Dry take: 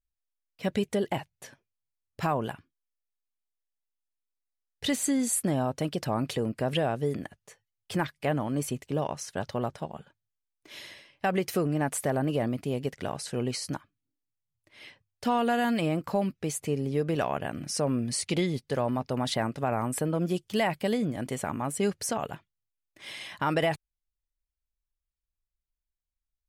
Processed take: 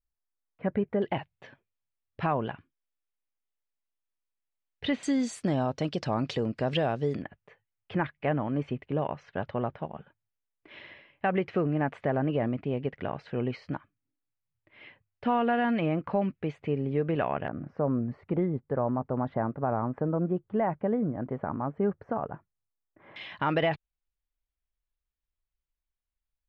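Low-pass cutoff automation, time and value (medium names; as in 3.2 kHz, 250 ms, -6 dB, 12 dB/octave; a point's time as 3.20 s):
low-pass 24 dB/octave
1.8 kHz
from 1.02 s 3.2 kHz
from 5.03 s 5.6 kHz
from 7.22 s 2.7 kHz
from 17.48 s 1.4 kHz
from 23.16 s 3.6 kHz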